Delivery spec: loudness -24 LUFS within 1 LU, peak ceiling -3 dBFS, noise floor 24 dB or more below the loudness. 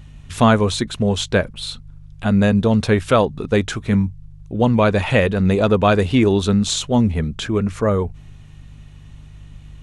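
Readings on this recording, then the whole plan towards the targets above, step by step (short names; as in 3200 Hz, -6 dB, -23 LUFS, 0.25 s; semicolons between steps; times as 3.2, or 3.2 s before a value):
hum 50 Hz; harmonics up to 150 Hz; hum level -40 dBFS; loudness -18.0 LUFS; peak -1.5 dBFS; loudness target -24.0 LUFS
-> de-hum 50 Hz, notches 3; gain -6 dB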